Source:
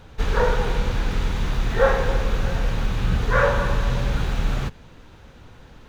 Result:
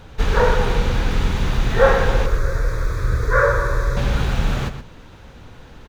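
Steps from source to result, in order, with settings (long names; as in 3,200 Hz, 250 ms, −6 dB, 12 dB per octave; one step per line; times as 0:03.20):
0:02.26–0:03.97: phaser with its sweep stopped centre 790 Hz, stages 6
slap from a distant wall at 21 metres, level −10 dB
level +4 dB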